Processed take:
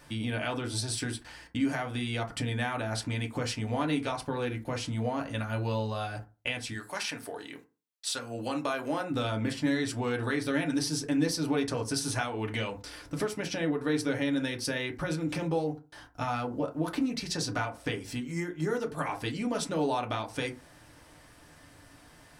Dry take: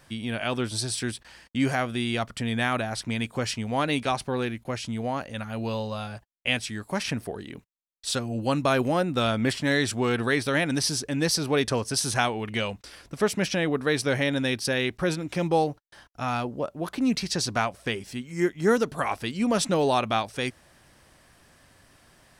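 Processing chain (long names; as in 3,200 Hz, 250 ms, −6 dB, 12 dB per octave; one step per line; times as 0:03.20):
0:06.73–0:09.10: high-pass filter 1,400 Hz → 420 Hz 6 dB per octave
downward compressor 5 to 1, threshold −31 dBFS, peak gain reduction 13.5 dB
feedback delay network reverb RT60 0.31 s, low-frequency decay 1.1×, high-frequency decay 0.45×, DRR 2 dB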